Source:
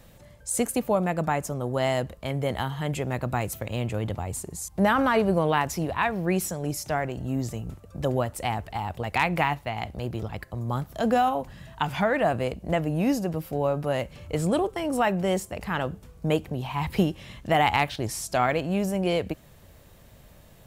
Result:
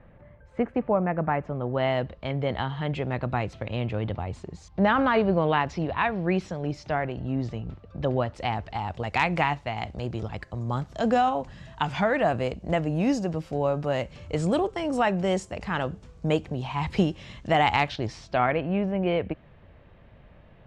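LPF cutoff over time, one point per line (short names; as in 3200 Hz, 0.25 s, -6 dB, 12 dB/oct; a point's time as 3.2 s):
LPF 24 dB/oct
1.2 s 2100 Hz
2.17 s 4200 Hz
8.05 s 4200 Hz
9.16 s 7200 Hz
17.8 s 7200 Hz
18.5 s 2800 Hz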